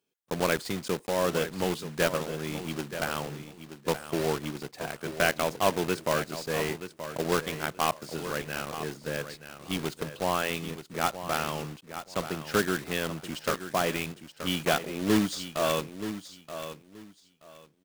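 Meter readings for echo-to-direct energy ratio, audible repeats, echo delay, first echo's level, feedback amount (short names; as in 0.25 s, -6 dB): -11.0 dB, 2, 0.927 s, -11.0 dB, 21%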